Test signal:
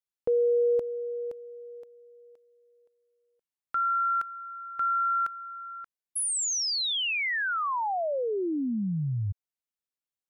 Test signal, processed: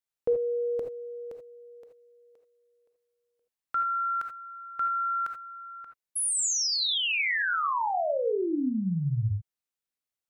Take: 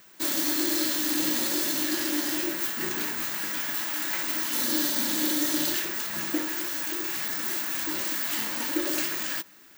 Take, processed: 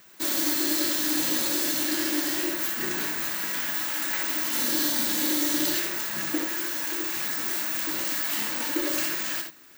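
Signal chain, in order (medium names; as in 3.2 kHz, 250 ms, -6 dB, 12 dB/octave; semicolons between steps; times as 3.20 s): gated-style reverb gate 100 ms rising, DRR 4.5 dB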